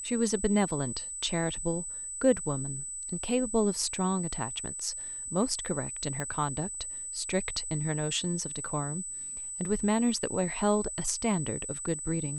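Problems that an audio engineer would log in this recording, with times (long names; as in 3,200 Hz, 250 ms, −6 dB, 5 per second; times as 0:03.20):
whistle 8,000 Hz −36 dBFS
0:06.20: click −19 dBFS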